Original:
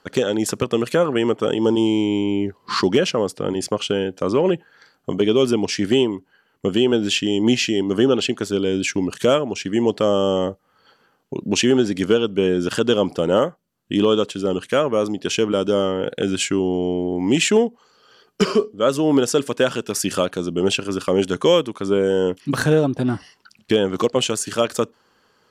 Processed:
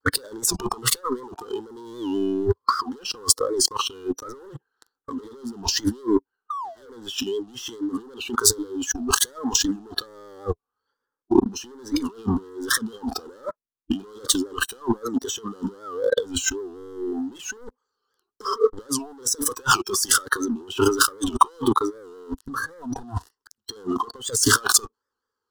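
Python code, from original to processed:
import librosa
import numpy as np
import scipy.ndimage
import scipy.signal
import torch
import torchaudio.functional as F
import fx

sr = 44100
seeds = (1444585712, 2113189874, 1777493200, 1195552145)

y = fx.spec_paint(x, sr, seeds[0], shape='fall', start_s=6.5, length_s=0.4, low_hz=430.0, high_hz=1300.0, level_db=-13.0)
y = fx.peak_eq(y, sr, hz=320.0, db=-7.0, octaves=0.28)
y = fx.leveller(y, sr, passes=5)
y = fx.over_compress(y, sr, threshold_db=-14.0, ratio=-0.5)
y = fx.fixed_phaser(y, sr, hz=640.0, stages=6)
y = fx.vibrato(y, sr, rate_hz=1.2, depth_cents=87.0)
y = fx.noise_reduce_blind(y, sr, reduce_db=15)
y = fx.record_warp(y, sr, rpm=78.0, depth_cents=160.0)
y = y * 10.0 ** (-3.5 / 20.0)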